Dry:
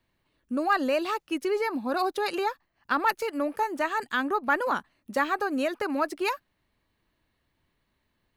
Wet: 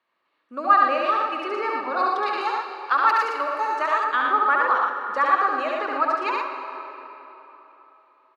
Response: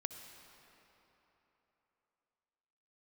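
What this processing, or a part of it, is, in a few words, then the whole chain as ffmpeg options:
station announcement: -filter_complex "[0:a]highpass=490,lowpass=3700,equalizer=frequency=1200:width_type=o:width=0.36:gain=10.5,aecho=1:1:69.97|116.6:0.708|0.631[link_01];[1:a]atrim=start_sample=2205[link_02];[link_01][link_02]afir=irnorm=-1:irlink=0,asettb=1/sr,asplit=3[link_03][link_04][link_05];[link_03]atrim=end=0.754[link_06];[link_04]atrim=start=0.75:end=1.52,asetpts=PTS-STARTPTS,afade=type=in:duration=0.004:curve=qsin,afade=type=out:start_time=0.766:duration=0.004:curve=qsin,bandreject=frequency=6700:width=9.5[link_07];[link_05]atrim=start=1.516[link_08];[link_06][link_07]acrossfade=duration=0.004:curve1=hsin:curve2=qsin[link_09];[link_09][link_08]acrossfade=duration=0.004:curve1=qsin:curve2=hsin,asettb=1/sr,asplit=3[link_10][link_11][link_12];[link_10]atrim=end=2.414[link_13];[link_11]atrim=start=2.41:end=4.04,asetpts=PTS-STARTPTS,afade=type=in:duration=0.004:curve=qsin,afade=type=out:start_time=1.626:duration=0.004:curve=qsin,bass=frequency=250:gain=-13,treble=frequency=4000:gain=8[link_14];[link_12]atrim=start=4.036[link_15];[link_13][link_14]acrossfade=duration=0.004:curve1=hsin:curve2=qsin[link_16];[link_16][link_15]acrossfade=duration=0.004:curve1=qsin:curve2=hsin,volume=2dB"

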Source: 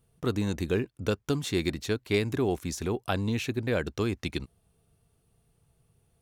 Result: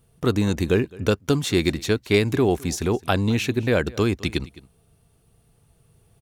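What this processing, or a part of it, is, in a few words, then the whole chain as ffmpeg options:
ducked delay: -filter_complex "[0:a]asplit=3[link_01][link_02][link_03];[link_02]adelay=212,volume=-2dB[link_04];[link_03]apad=whole_len=283269[link_05];[link_04][link_05]sidechaincompress=threshold=-43dB:ratio=16:attack=16:release=1470[link_06];[link_01][link_06]amix=inputs=2:normalize=0,volume=7.5dB"

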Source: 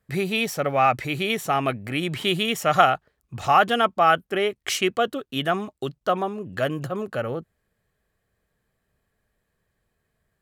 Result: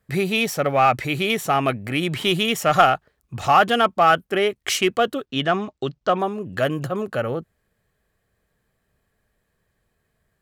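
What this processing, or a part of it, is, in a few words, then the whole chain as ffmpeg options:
parallel distortion: -filter_complex "[0:a]asplit=3[link_01][link_02][link_03];[link_01]afade=type=out:start_time=5.25:duration=0.02[link_04];[link_02]lowpass=frequency=6400:width=0.5412,lowpass=frequency=6400:width=1.3066,afade=type=in:start_time=5.25:duration=0.02,afade=type=out:start_time=6.18:duration=0.02[link_05];[link_03]afade=type=in:start_time=6.18:duration=0.02[link_06];[link_04][link_05][link_06]amix=inputs=3:normalize=0,asplit=2[link_07][link_08];[link_08]asoftclip=type=hard:threshold=-17dB,volume=-7dB[link_09];[link_07][link_09]amix=inputs=2:normalize=0"

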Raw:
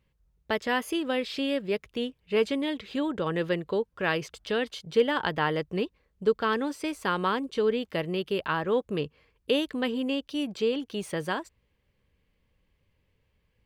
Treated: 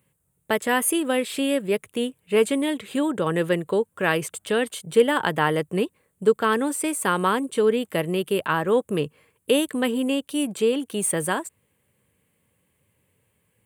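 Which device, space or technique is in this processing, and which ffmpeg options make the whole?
budget condenser microphone: -af "highpass=frequency=96:width=0.5412,highpass=frequency=96:width=1.3066,highshelf=frequency=6800:width_type=q:width=3:gain=10.5,volume=5.5dB"

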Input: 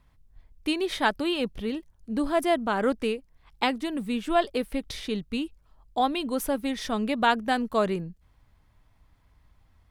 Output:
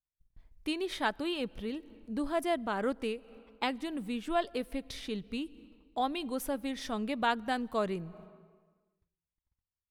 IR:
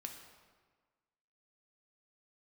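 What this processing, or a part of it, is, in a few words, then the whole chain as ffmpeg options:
ducked reverb: -filter_complex "[0:a]agate=range=-36dB:threshold=-53dB:ratio=16:detection=peak,asplit=3[link_01][link_02][link_03];[1:a]atrim=start_sample=2205[link_04];[link_02][link_04]afir=irnorm=-1:irlink=0[link_05];[link_03]apad=whole_len=436965[link_06];[link_05][link_06]sidechaincompress=threshold=-40dB:ratio=8:attack=5.2:release=178,volume=-2dB[link_07];[link_01][link_07]amix=inputs=2:normalize=0,volume=-7.5dB"

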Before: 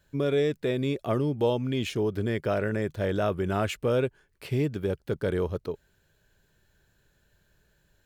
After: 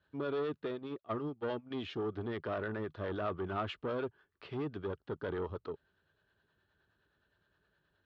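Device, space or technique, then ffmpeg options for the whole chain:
guitar amplifier with harmonic tremolo: -filter_complex "[0:a]acrossover=split=470[link_01][link_02];[link_01]aeval=exprs='val(0)*(1-0.5/2+0.5/2*cos(2*PI*9.6*n/s))':channel_layout=same[link_03];[link_02]aeval=exprs='val(0)*(1-0.5/2-0.5/2*cos(2*PI*9.6*n/s))':channel_layout=same[link_04];[link_03][link_04]amix=inputs=2:normalize=0,asoftclip=type=tanh:threshold=-26dB,highpass=95,equalizer=frequency=130:width_type=q:width=4:gain=-8,equalizer=frequency=190:width_type=q:width=4:gain=-5,equalizer=frequency=530:width_type=q:width=4:gain=-4,equalizer=frequency=1200:width_type=q:width=4:gain=7,equalizer=frequency=2300:width_type=q:width=4:gain=-7,lowpass=frequency=3800:width=0.5412,lowpass=frequency=3800:width=1.3066,asplit=3[link_05][link_06][link_07];[link_05]afade=type=out:start_time=0.67:duration=0.02[link_08];[link_06]agate=range=-19dB:threshold=-33dB:ratio=16:detection=peak,afade=type=in:start_time=0.67:duration=0.02,afade=type=out:start_time=1.7:duration=0.02[link_09];[link_07]afade=type=in:start_time=1.7:duration=0.02[link_10];[link_08][link_09][link_10]amix=inputs=3:normalize=0,volume=-3dB"

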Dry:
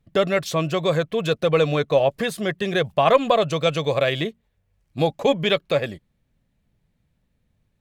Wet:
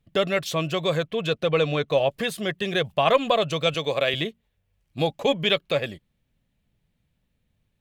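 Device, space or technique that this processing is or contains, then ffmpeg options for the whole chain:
presence and air boost: -filter_complex "[0:a]equalizer=frequency=3000:width_type=o:width=0.82:gain=5.5,highshelf=frequency=10000:gain=4.5,asettb=1/sr,asplit=3[link_01][link_02][link_03];[link_01]atrim=end=1.074[link_04];[link_02]atrim=start=1.07:end=1.88,asetpts=PTS-STARTPTS,afade=type=in:duration=0.004:curve=qsin,afade=type=out:start_time=0.806:duration=0.004:curve=qsin,highshelf=frequency=7600:gain=-8.5[link_05];[link_03]atrim=start=1.876[link_06];[link_04][link_05]acrossfade=duration=0.004:curve1=hsin:curve2=qsin[link_07];[link_07][link_06]acrossfade=duration=0.004:curve1=qsin:curve2=hsin,asettb=1/sr,asplit=3[link_08][link_09][link_10];[link_08]atrim=end=3.744[link_11];[link_09]atrim=start=3.74:end=4.14,asetpts=PTS-STARTPTS,afade=type=in:duration=0.004:curve=qsin,afade=type=out:start_time=0.396:duration=0.004:curve=qsin,highpass=170[link_12];[link_10]atrim=start=4.136[link_13];[link_11][link_12]acrossfade=duration=0.004:curve1=hsin:curve2=qsin[link_14];[link_14][link_13]acrossfade=duration=0.004:curve1=qsin:curve2=hsin,volume=-3.5dB"

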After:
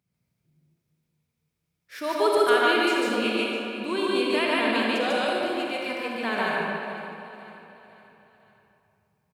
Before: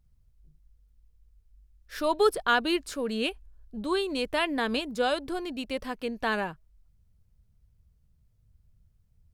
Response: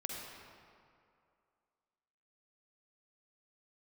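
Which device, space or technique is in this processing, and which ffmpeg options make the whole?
stadium PA: -filter_complex "[0:a]asettb=1/sr,asplit=3[link_01][link_02][link_03];[link_01]atrim=end=5.514[link_04];[link_02]atrim=start=5.51:end=6.15,asetpts=PTS-STARTPTS,afade=type=in:duration=0.004:curve=qsin,afade=type=out:start_time=0.636:duration=0.004:curve=qsin,lowshelf=frequency=460:gain=-6.5[link_05];[link_03]atrim=start=6.146[link_06];[link_04][link_05]acrossfade=duration=0.004:curve1=hsin:curve2=qsin[link_07];[link_07][link_06]acrossfade=duration=0.004:curve1=qsin:curve2=hsin,highpass=frequency=130:width=0.5412,highpass=frequency=130:width=1.3066,equalizer=frequency=2300:width_type=o:width=0.36:gain=8,aecho=1:1:145.8|180.8:1|0.316,aecho=1:1:505|1010|1515|2020:0.178|0.08|0.036|0.0162[link_08];[1:a]atrim=start_sample=2205[link_09];[link_08][link_09]afir=irnorm=-1:irlink=0"

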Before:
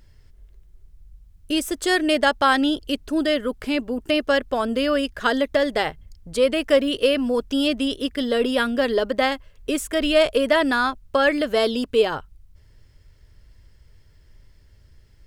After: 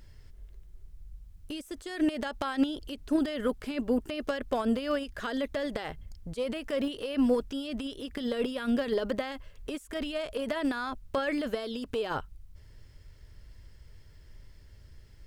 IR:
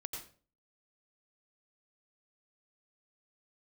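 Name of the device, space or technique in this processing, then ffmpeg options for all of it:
de-esser from a sidechain: -filter_complex "[0:a]asplit=2[link_01][link_02];[link_02]highpass=6700,apad=whole_len=673317[link_03];[link_01][link_03]sidechaincompress=threshold=-53dB:ratio=5:attack=0.76:release=30"

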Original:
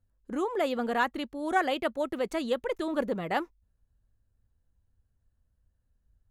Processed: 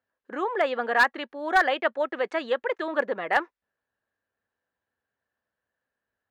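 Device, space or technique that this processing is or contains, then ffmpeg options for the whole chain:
megaphone: -af "highpass=510,lowpass=2900,equalizer=frequency=1700:width_type=o:width=0.31:gain=7.5,asoftclip=type=hard:threshold=-18dB,volume=6dB"

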